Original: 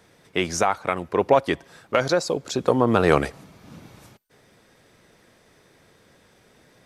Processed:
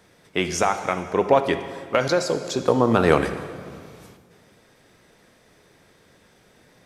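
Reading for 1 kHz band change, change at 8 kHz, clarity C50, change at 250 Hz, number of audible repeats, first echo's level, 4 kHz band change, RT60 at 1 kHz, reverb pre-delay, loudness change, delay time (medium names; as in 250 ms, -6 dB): +0.5 dB, +0.5 dB, 10.0 dB, +1.0 dB, no echo, no echo, +0.5 dB, 1.8 s, 3 ms, +0.5 dB, no echo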